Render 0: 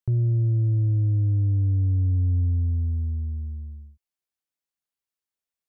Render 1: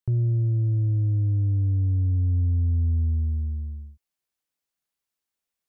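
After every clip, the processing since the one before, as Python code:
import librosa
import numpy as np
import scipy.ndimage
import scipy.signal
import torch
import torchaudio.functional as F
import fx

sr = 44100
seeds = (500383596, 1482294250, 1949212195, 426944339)

y = fx.rider(x, sr, range_db=4, speed_s=0.5)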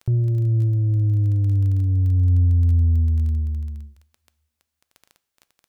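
y = fx.dmg_crackle(x, sr, seeds[0], per_s=13.0, level_db=-36.0)
y = fx.rev_double_slope(y, sr, seeds[1], early_s=0.57, late_s=1.9, knee_db=-18, drr_db=15.5)
y = y * 10.0 ** (4.0 / 20.0)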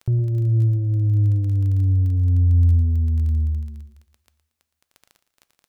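y = fx.echo_feedback(x, sr, ms=115, feedback_pct=37, wet_db=-13)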